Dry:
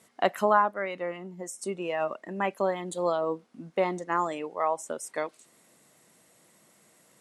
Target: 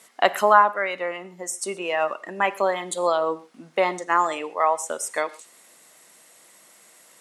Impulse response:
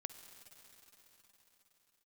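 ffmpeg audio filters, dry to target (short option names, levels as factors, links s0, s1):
-filter_complex "[0:a]highpass=f=870:p=1,asplit=2[s0][s1];[1:a]atrim=start_sample=2205,afade=t=out:st=0.22:d=0.01,atrim=end_sample=10143,asetrate=52920,aresample=44100[s2];[s1][s2]afir=irnorm=-1:irlink=0,volume=3.16[s3];[s0][s3]amix=inputs=2:normalize=0,volume=1.19"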